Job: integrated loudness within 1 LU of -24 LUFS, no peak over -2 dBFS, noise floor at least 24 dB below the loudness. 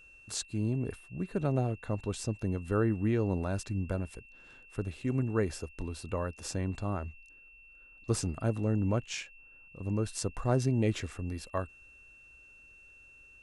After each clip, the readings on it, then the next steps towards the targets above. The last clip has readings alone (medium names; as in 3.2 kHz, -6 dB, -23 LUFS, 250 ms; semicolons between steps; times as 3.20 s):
steady tone 2.7 kHz; tone level -54 dBFS; loudness -33.5 LUFS; peak level -14.0 dBFS; loudness target -24.0 LUFS
-> band-stop 2.7 kHz, Q 30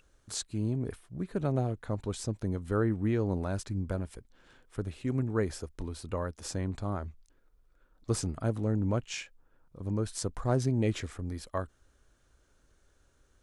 steady tone not found; loudness -33.5 LUFS; peak level -14.0 dBFS; loudness target -24.0 LUFS
-> trim +9.5 dB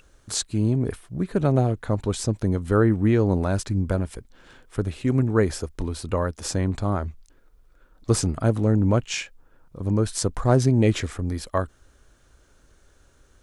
loudness -24.0 LUFS; peak level -4.5 dBFS; noise floor -59 dBFS